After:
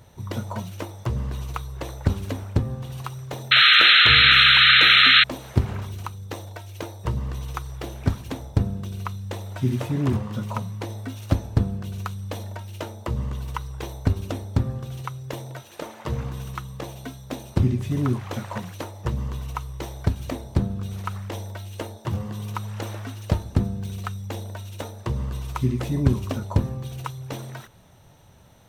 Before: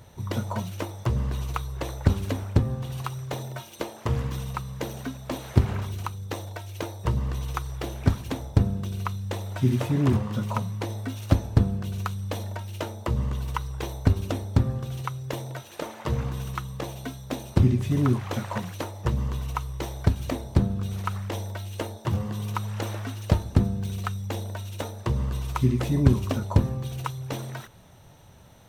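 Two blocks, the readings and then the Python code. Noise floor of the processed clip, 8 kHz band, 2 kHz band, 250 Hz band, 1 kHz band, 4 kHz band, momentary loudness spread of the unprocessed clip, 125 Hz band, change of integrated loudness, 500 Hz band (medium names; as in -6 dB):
-47 dBFS, -1.0 dB, +19.5 dB, -1.0 dB, +5.0 dB, +22.0 dB, 11 LU, -1.0 dB, +8.0 dB, -1.0 dB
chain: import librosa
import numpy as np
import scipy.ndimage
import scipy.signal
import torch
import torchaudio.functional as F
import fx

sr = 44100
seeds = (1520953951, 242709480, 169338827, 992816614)

y = fx.spec_paint(x, sr, seeds[0], shape='noise', start_s=3.51, length_s=1.73, low_hz=1200.0, high_hz=4200.0, level_db=-13.0)
y = F.gain(torch.from_numpy(y), -1.0).numpy()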